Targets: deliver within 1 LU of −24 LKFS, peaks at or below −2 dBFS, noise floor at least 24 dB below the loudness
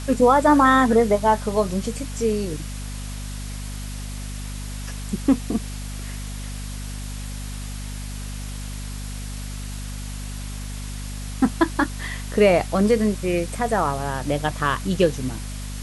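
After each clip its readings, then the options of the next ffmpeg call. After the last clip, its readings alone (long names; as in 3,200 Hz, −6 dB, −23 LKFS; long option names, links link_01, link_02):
mains hum 50 Hz; hum harmonics up to 250 Hz; level of the hum −29 dBFS; background noise floor −31 dBFS; target noise floor −48 dBFS; integrated loudness −24.0 LKFS; sample peak −4.5 dBFS; target loudness −24.0 LKFS
→ -af "bandreject=frequency=50:width_type=h:width=4,bandreject=frequency=100:width_type=h:width=4,bandreject=frequency=150:width_type=h:width=4,bandreject=frequency=200:width_type=h:width=4,bandreject=frequency=250:width_type=h:width=4"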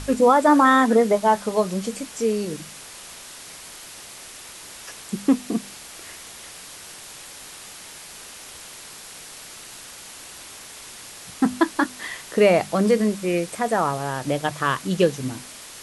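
mains hum none found; background noise floor −41 dBFS; target noise floor −45 dBFS
→ -af "afftdn=noise_reduction=6:noise_floor=-41"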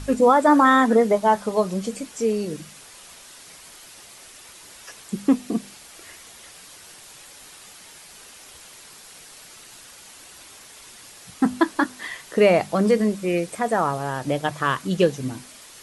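background noise floor −46 dBFS; integrated loudness −21.0 LKFS; sample peak −4.5 dBFS; target loudness −24.0 LKFS
→ -af "volume=-3dB"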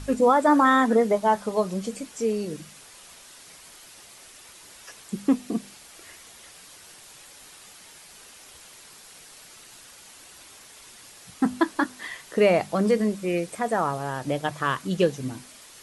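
integrated loudness −24.0 LKFS; sample peak −7.5 dBFS; background noise floor −49 dBFS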